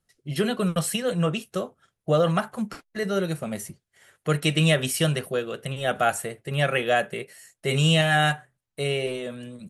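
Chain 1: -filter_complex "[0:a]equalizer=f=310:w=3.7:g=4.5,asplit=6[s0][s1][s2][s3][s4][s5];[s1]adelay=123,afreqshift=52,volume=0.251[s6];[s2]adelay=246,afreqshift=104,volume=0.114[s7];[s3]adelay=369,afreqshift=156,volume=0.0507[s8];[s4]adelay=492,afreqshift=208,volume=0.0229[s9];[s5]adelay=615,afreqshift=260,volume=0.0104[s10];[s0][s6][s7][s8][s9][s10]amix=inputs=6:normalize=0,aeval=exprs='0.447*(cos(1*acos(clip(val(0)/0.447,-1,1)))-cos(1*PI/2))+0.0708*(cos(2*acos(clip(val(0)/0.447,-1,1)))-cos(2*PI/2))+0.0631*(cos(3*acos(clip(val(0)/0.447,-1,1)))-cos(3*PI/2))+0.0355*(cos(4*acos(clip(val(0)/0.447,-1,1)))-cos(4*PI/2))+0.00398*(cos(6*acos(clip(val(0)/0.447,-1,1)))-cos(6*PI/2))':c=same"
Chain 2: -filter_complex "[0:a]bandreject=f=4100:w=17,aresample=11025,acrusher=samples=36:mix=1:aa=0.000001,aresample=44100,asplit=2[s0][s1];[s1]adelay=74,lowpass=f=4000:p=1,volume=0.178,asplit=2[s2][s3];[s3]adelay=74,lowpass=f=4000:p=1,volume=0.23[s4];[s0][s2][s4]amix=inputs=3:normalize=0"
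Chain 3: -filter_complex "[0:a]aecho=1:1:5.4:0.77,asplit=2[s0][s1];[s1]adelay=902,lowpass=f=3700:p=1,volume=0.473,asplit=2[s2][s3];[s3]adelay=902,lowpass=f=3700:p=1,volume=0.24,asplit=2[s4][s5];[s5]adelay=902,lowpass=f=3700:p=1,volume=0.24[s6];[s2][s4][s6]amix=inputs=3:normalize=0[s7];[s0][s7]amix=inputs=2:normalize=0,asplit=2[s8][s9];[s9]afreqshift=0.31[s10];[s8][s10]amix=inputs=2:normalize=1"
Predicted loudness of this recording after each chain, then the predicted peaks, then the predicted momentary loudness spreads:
-28.0 LUFS, -27.5 LUFS, -24.5 LUFS; -4.5 dBFS, -9.5 dBFS, -7.5 dBFS; 14 LU, 12 LU, 13 LU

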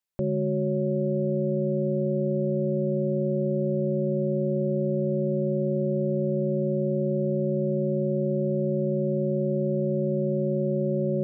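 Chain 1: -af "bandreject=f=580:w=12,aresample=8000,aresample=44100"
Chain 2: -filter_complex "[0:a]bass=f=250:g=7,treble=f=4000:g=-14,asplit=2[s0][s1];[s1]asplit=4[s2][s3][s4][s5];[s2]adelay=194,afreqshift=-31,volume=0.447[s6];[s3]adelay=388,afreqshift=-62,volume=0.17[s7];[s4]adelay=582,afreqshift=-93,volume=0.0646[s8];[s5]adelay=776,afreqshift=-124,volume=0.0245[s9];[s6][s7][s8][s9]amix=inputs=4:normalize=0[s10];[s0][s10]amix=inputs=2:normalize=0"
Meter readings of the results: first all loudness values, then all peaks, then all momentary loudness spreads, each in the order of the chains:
-26.5 LUFS, -21.5 LUFS; -17.0 dBFS, -10.0 dBFS; 0 LU, 1 LU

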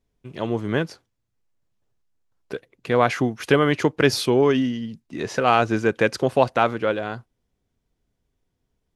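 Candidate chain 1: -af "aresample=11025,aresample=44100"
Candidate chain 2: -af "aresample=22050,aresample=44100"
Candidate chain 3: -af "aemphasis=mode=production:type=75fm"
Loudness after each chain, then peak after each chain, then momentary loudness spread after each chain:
-21.5 LUFS, -21.5 LUFS, -20.5 LUFS; -2.5 dBFS, -2.5 dBFS, -2.0 dBFS; 15 LU, 15 LU, 18 LU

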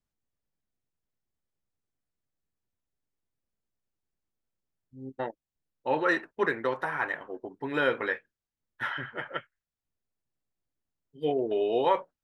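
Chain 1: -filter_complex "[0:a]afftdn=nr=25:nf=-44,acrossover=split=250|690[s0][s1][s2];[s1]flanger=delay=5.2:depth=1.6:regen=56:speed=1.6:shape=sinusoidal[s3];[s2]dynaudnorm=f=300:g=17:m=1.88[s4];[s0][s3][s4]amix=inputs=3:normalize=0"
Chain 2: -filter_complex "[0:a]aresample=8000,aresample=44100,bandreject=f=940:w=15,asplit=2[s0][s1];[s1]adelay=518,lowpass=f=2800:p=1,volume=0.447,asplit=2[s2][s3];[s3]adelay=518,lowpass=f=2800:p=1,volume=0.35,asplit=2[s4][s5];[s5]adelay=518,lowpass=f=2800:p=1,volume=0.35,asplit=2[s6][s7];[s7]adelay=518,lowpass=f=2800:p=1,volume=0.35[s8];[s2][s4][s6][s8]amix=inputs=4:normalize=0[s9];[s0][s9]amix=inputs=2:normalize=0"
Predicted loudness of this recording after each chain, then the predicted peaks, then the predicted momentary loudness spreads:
-28.0 LUFS, -30.0 LUFS; -10.5 dBFS, -13.0 dBFS; 13 LU, 17 LU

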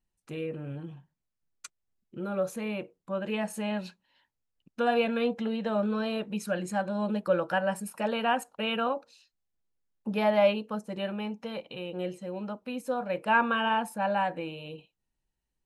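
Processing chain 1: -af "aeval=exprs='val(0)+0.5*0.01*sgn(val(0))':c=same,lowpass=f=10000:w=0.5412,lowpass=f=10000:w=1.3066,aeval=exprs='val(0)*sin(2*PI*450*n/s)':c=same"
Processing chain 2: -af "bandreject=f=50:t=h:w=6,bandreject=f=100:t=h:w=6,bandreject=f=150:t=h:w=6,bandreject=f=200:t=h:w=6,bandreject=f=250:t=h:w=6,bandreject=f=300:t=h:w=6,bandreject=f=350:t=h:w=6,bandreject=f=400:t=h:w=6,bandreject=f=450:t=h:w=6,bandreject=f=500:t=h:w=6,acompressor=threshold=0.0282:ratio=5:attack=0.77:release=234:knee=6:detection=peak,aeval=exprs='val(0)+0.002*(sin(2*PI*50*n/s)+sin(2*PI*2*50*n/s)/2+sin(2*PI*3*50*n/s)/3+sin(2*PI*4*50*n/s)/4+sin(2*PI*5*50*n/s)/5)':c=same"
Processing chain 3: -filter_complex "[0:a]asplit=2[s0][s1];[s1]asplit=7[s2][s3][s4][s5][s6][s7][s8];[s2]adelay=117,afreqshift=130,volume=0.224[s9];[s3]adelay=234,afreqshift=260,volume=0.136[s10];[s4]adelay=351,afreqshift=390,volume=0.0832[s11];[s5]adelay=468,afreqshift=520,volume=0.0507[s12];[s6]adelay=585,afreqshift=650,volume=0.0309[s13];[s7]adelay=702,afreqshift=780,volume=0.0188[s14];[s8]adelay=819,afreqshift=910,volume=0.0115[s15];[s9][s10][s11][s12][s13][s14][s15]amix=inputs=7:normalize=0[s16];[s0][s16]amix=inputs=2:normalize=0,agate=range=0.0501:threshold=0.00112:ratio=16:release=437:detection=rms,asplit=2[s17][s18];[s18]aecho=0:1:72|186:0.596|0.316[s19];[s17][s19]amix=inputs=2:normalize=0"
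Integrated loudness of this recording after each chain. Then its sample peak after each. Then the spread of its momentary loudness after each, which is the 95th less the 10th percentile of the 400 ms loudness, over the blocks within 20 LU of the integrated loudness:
-32.5 LUFS, -38.0 LUFS, -28.5 LUFS; -13.0 dBFS, -26.0 dBFS, -11.0 dBFS; 20 LU, 12 LU, 17 LU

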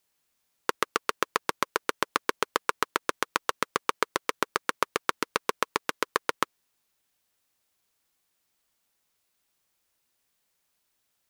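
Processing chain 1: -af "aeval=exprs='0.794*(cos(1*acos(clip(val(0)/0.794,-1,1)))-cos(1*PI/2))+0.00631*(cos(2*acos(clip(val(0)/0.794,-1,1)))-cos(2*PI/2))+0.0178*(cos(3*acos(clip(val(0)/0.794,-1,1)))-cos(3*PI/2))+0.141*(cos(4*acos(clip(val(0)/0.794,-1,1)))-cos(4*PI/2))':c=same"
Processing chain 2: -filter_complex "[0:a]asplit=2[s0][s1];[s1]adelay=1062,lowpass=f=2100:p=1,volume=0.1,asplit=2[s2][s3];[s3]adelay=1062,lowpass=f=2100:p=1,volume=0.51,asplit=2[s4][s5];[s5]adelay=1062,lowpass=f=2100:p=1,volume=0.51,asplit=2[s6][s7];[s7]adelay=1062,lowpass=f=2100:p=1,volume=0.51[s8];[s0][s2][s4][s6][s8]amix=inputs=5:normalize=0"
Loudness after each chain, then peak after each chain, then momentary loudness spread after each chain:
-31.0 LUFS, -30.5 LUFS; -2.0 dBFS, -2.0 dBFS; 3 LU, 2 LU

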